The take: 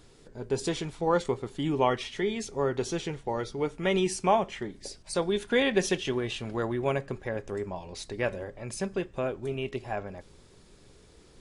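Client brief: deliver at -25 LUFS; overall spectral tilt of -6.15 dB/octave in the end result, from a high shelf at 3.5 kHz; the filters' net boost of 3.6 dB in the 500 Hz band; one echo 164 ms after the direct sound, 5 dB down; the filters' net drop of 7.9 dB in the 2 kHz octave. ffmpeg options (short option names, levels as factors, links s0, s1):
-af "equalizer=f=500:t=o:g=5,equalizer=f=2000:t=o:g=-7.5,highshelf=f=3500:g=-8.5,aecho=1:1:164:0.562,volume=1.26"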